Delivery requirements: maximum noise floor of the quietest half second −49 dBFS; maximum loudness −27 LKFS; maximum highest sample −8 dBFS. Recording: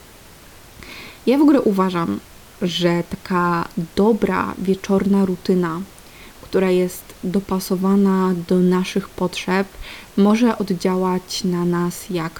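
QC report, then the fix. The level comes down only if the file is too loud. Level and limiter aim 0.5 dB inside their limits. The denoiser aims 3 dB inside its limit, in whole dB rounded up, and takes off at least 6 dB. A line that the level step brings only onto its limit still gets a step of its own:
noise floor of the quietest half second −43 dBFS: out of spec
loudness −19.5 LKFS: out of spec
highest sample −4.0 dBFS: out of spec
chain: level −8 dB

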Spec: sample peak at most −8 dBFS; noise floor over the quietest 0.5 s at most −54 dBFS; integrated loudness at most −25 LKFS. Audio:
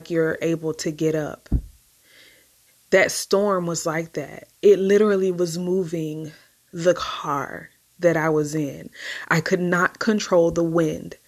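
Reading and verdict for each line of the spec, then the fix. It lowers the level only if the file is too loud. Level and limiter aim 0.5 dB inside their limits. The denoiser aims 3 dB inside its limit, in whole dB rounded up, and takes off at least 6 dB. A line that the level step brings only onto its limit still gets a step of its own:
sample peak −5.5 dBFS: out of spec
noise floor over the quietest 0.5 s −58 dBFS: in spec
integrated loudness −22.0 LKFS: out of spec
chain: level −3.5 dB

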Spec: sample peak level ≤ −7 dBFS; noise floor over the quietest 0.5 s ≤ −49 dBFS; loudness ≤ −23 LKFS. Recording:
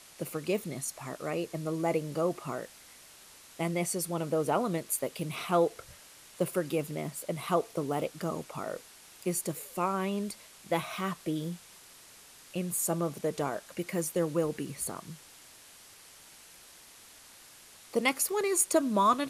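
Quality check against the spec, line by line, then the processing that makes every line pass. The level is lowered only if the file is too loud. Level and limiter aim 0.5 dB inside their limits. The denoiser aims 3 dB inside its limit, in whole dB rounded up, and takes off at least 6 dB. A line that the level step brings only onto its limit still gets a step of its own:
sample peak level −12.5 dBFS: in spec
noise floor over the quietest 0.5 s −54 dBFS: in spec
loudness −32.0 LKFS: in spec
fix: no processing needed

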